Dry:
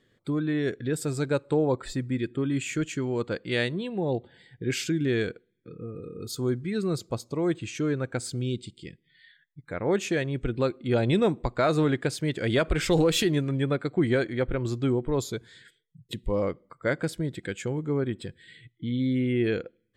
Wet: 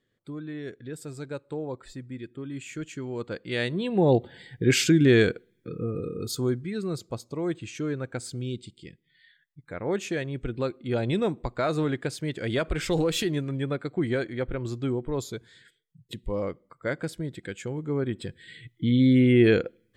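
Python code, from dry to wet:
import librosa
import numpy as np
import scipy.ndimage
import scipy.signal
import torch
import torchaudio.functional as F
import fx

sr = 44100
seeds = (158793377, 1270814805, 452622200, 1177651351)

y = fx.gain(x, sr, db=fx.line((2.43, -9.5), (3.59, -2.0), (4.01, 7.5), (6.02, 7.5), (6.75, -3.0), (17.71, -3.0), (18.86, 7.0)))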